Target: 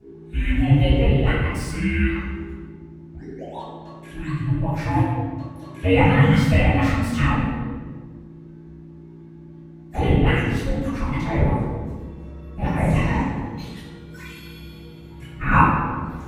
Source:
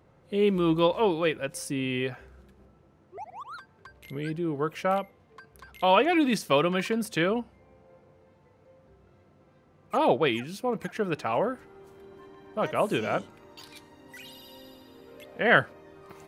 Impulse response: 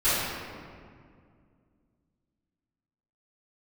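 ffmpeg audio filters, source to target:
-filter_complex "[0:a]acrossover=split=170|770|3700[link_01][link_02][link_03][link_04];[link_04]asoftclip=type=hard:threshold=-39.5dB[link_05];[link_01][link_02][link_03][link_05]amix=inputs=4:normalize=0,aeval=exprs='val(0)+0.01*(sin(2*PI*60*n/s)+sin(2*PI*2*60*n/s)/2+sin(2*PI*3*60*n/s)/3+sin(2*PI*4*60*n/s)/4+sin(2*PI*5*60*n/s)/5)':channel_layout=same,afreqshift=-460,highpass=41,bandreject=frequency=50:width_type=h:width=6,bandreject=frequency=100:width_type=h:width=6,bandreject=frequency=150:width_type=h:width=6,bandreject=frequency=200:width_type=h:width=6,bandreject=frequency=250:width_type=h:width=6,bandreject=frequency=300:width_type=h:width=6,bandreject=frequency=350:width_type=h:width=6,bandreject=frequency=400:width_type=h:width=6[link_06];[1:a]atrim=start_sample=2205,asetrate=70560,aresample=44100[link_07];[link_06][link_07]afir=irnorm=-1:irlink=0,volume=-5.5dB"

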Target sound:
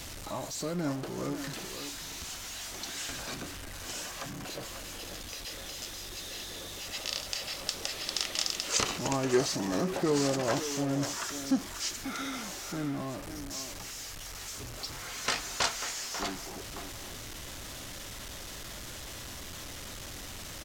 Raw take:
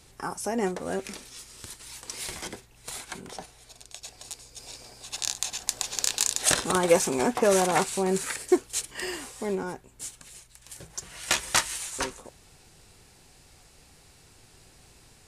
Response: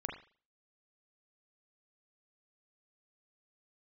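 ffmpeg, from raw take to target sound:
-filter_complex "[0:a]aeval=exprs='val(0)+0.5*0.0316*sgn(val(0))':channel_layout=same,asplit=2[link_01][link_02];[link_02]adelay=400,highpass=300,lowpass=3400,asoftclip=type=hard:threshold=-18dB,volume=-8dB[link_03];[link_01][link_03]amix=inputs=2:normalize=0,asetrate=32634,aresample=44100,volume=-7.5dB"

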